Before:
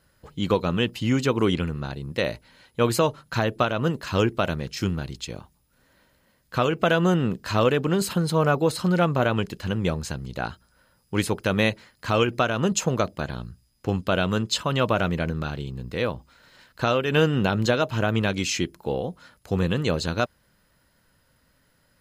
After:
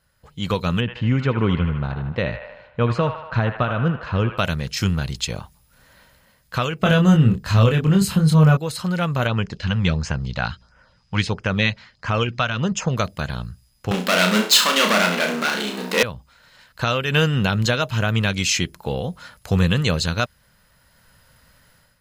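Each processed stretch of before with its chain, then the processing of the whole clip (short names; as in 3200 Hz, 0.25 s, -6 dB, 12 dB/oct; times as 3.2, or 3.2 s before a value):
0.8–4.38 tape spacing loss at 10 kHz 38 dB + band-limited delay 77 ms, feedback 57%, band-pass 1400 Hz, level -5.5 dB
6.83–8.57 low shelf 360 Hz +11.5 dB + doubler 26 ms -3.5 dB
9.27–12.97 LPF 5700 Hz 24 dB/oct + LFO notch sine 1.5 Hz 340–4200 Hz
13.91–16.03 sample leveller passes 5 + brick-wall FIR high-pass 190 Hz + flutter echo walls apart 5.7 m, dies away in 0.4 s
whole clip: bell 320 Hz -10 dB 1 oct; AGC gain up to 12.5 dB; dynamic EQ 750 Hz, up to -6 dB, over -28 dBFS, Q 0.83; gain -2 dB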